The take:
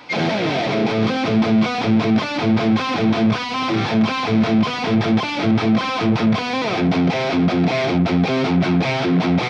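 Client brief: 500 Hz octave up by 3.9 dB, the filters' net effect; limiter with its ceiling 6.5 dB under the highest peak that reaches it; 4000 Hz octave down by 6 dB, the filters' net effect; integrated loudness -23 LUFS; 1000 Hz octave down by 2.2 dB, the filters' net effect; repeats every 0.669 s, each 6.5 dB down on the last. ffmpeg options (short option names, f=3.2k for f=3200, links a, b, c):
-af "equalizer=f=500:t=o:g=7,equalizer=f=1k:t=o:g=-6,equalizer=f=4k:t=o:g=-7.5,alimiter=limit=-12dB:level=0:latency=1,aecho=1:1:669|1338|2007|2676|3345|4014:0.473|0.222|0.105|0.0491|0.0231|0.0109,volume=-3.5dB"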